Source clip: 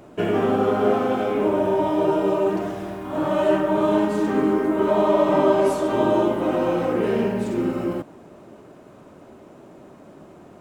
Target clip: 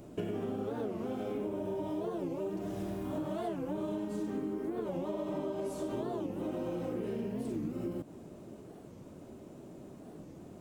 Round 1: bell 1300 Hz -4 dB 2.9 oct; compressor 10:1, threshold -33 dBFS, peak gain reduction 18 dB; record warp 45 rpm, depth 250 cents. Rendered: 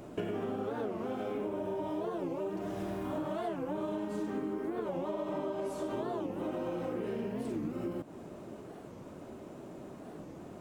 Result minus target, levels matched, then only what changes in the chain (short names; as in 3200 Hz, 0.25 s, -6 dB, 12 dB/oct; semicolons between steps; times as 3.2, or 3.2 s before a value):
1000 Hz band +4.0 dB
change: bell 1300 Hz -12 dB 2.9 oct